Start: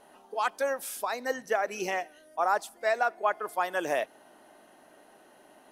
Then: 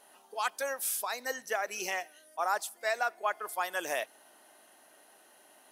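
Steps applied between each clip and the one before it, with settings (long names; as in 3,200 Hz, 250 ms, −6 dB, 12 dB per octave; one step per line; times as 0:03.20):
spectral tilt +3 dB per octave
level −4 dB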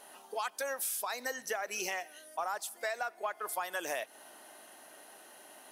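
in parallel at −9.5 dB: soft clipping −31.5 dBFS, distortion −9 dB
on the sum: downward compressor 6 to 1, threshold −36 dBFS, peak gain reduction 12 dB
level +3 dB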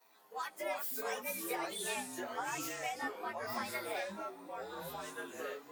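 partials spread apart or drawn together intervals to 113%
delay with pitch and tempo change per echo 176 ms, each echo −5 semitones, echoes 3
multiband upward and downward expander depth 40%
level −1 dB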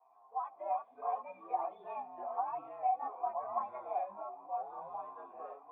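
formant resonators in series a
level +12 dB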